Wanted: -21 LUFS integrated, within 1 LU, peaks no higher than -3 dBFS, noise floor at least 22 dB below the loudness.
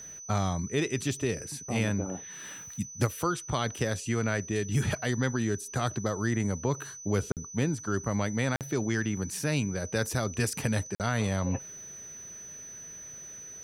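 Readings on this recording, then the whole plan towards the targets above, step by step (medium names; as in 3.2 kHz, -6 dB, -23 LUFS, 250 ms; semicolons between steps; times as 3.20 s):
dropouts 3; longest dropout 48 ms; steady tone 6 kHz; tone level -42 dBFS; loudness -30.5 LUFS; peak level -13.0 dBFS; loudness target -21.0 LUFS
-> interpolate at 7.32/8.56/10.95 s, 48 ms; band-stop 6 kHz, Q 30; trim +9.5 dB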